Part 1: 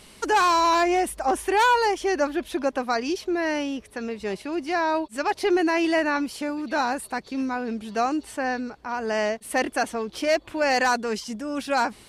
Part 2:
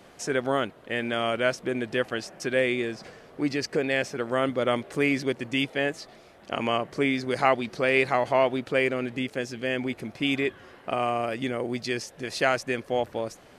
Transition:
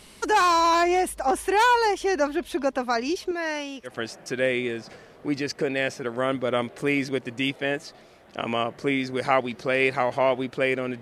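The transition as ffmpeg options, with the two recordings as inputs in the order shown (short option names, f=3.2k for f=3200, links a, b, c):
-filter_complex "[0:a]asettb=1/sr,asplit=3[a][b][c];[a]atrim=end=3.314[d];[b]atrim=start=3.31:end=3.97,asetpts=PTS-STARTPTS,afade=t=in:d=0.004:c=qsin,afade=t=out:st=0.656:d=0.004:c=qsin,lowshelf=f=410:g=-11.5[e];[c]atrim=start=3.966[f];[d][e]acrossfade=d=0.004:c1=hsin:c2=qsin[g];[g][f]acrossfade=d=0.004:c1=qsin:c2=hsin,apad=whole_dur=11.01,atrim=end=11.01,atrim=end=3.97,asetpts=PTS-STARTPTS[h];[1:a]atrim=start=1.97:end=9.15,asetpts=PTS-STARTPTS[i];[h][i]acrossfade=d=0.14:c1=tri:c2=tri"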